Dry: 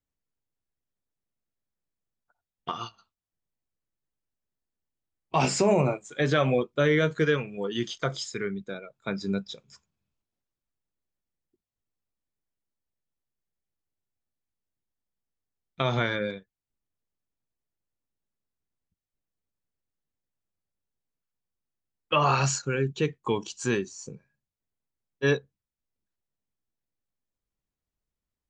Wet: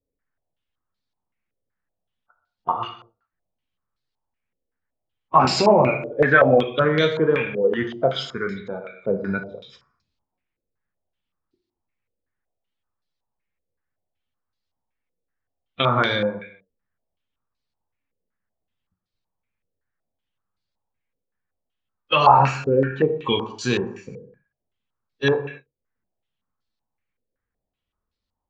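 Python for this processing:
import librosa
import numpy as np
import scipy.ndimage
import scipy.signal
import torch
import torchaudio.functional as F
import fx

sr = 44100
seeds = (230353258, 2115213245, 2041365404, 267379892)

y = fx.spec_quant(x, sr, step_db=15)
y = fx.rev_gated(y, sr, seeds[0], gate_ms=270, shape='falling', drr_db=5.5)
y = fx.filter_held_lowpass(y, sr, hz=5.3, low_hz=490.0, high_hz=4300.0)
y = y * 10.0 ** (3.5 / 20.0)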